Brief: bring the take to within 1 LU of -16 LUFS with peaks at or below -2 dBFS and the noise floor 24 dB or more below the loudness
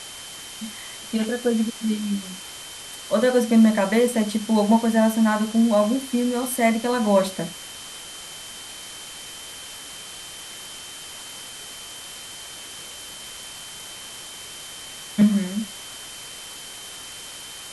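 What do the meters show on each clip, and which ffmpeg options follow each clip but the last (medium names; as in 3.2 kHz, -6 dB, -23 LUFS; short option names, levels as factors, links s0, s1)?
steady tone 3.1 kHz; tone level -41 dBFS; noise floor -39 dBFS; noise floor target -46 dBFS; loudness -21.5 LUFS; peak level -6.0 dBFS; loudness target -16.0 LUFS
-> -af "bandreject=f=3100:w=30"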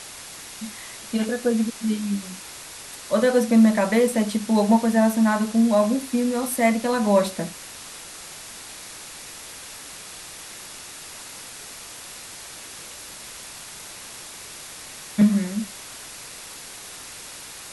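steady tone not found; noise floor -40 dBFS; noise floor target -46 dBFS
-> -af "afftdn=nr=6:nf=-40"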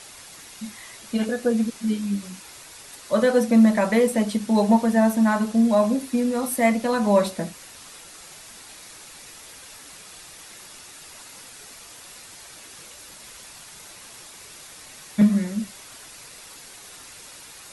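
noise floor -44 dBFS; noise floor target -46 dBFS
-> -af "afftdn=nr=6:nf=-44"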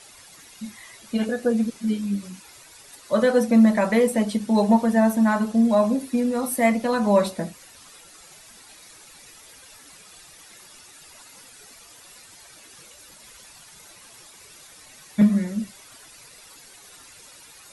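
noise floor -48 dBFS; loudness -21.5 LUFS; peak level -6.0 dBFS; loudness target -16.0 LUFS
-> -af "volume=1.88,alimiter=limit=0.794:level=0:latency=1"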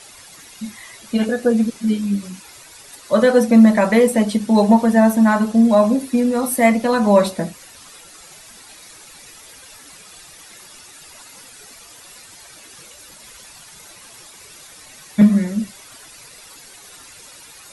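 loudness -16.0 LUFS; peak level -2.0 dBFS; noise floor -43 dBFS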